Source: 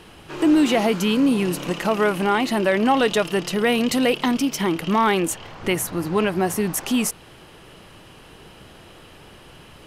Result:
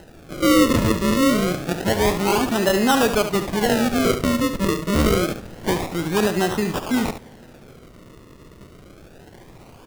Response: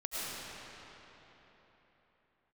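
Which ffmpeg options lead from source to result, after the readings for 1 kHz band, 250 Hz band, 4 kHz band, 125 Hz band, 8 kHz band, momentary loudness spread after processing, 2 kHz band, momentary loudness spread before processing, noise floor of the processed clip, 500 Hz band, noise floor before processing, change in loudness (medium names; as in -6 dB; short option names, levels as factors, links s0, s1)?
-0.5 dB, 0.0 dB, +1.0 dB, +4.5 dB, 0.0 dB, 7 LU, 0.0 dB, 6 LU, -46 dBFS, +1.0 dB, -46 dBFS, +0.5 dB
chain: -filter_complex "[0:a]acrusher=samples=38:mix=1:aa=0.000001:lfo=1:lforange=38:lforate=0.27,aecho=1:1:71:0.335,asplit=2[s0][s1];[1:a]atrim=start_sample=2205,asetrate=52920,aresample=44100[s2];[s1][s2]afir=irnorm=-1:irlink=0,volume=0.0422[s3];[s0][s3]amix=inputs=2:normalize=0"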